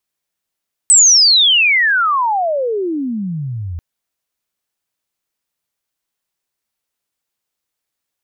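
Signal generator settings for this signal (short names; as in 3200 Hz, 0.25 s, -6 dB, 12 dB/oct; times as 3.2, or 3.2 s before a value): chirp logarithmic 8300 Hz -> 80 Hz -4.5 dBFS -> -21.5 dBFS 2.89 s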